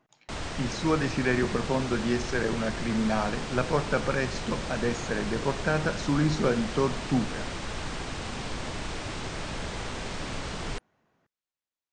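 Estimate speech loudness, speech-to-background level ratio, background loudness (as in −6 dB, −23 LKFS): −29.0 LKFS, 6.0 dB, −35.0 LKFS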